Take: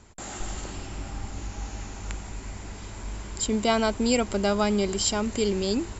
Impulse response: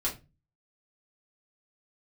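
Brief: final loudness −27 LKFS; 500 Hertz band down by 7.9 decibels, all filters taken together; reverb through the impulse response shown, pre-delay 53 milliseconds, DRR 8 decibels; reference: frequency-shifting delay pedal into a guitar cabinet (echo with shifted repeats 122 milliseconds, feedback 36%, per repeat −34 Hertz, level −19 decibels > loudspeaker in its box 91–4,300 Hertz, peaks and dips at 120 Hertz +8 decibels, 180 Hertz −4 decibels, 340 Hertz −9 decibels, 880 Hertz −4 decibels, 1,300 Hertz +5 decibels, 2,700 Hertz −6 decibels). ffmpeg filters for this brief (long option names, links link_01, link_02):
-filter_complex "[0:a]equalizer=frequency=500:width_type=o:gain=-8,asplit=2[link_01][link_02];[1:a]atrim=start_sample=2205,adelay=53[link_03];[link_02][link_03]afir=irnorm=-1:irlink=0,volume=-13.5dB[link_04];[link_01][link_04]amix=inputs=2:normalize=0,asplit=4[link_05][link_06][link_07][link_08];[link_06]adelay=122,afreqshift=-34,volume=-19dB[link_09];[link_07]adelay=244,afreqshift=-68,volume=-27.9dB[link_10];[link_08]adelay=366,afreqshift=-102,volume=-36.7dB[link_11];[link_05][link_09][link_10][link_11]amix=inputs=4:normalize=0,highpass=91,equalizer=frequency=120:width_type=q:width=4:gain=8,equalizer=frequency=180:width_type=q:width=4:gain=-4,equalizer=frequency=340:width_type=q:width=4:gain=-9,equalizer=frequency=880:width_type=q:width=4:gain=-4,equalizer=frequency=1300:width_type=q:width=4:gain=5,equalizer=frequency=2700:width_type=q:width=4:gain=-6,lowpass=frequency=4300:width=0.5412,lowpass=frequency=4300:width=1.3066,volume=4dB"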